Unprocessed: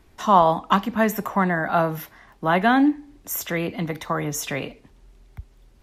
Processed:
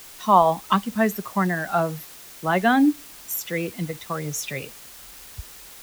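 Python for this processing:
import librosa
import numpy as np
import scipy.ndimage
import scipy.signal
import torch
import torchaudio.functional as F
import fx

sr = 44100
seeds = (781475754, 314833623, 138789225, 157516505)

p1 = fx.bin_expand(x, sr, power=1.5)
p2 = fx.quant_dither(p1, sr, seeds[0], bits=6, dither='triangular')
p3 = p1 + (p2 * 10.0 ** (-4.5 / 20.0))
y = p3 * 10.0 ** (-3.0 / 20.0)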